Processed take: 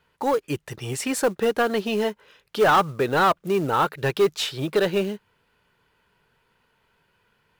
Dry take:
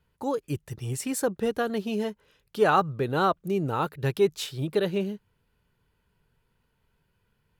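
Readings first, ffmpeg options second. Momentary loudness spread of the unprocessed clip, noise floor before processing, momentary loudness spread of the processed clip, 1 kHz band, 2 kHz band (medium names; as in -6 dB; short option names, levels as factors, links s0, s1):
11 LU, -73 dBFS, 12 LU, +5.5 dB, +7.0 dB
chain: -filter_complex "[0:a]asplit=2[s0][s1];[s1]highpass=f=720:p=1,volume=7.94,asoftclip=type=tanh:threshold=0.335[s2];[s0][s2]amix=inputs=2:normalize=0,lowpass=f=3300:p=1,volume=0.501,acrusher=bits=6:mode=log:mix=0:aa=0.000001"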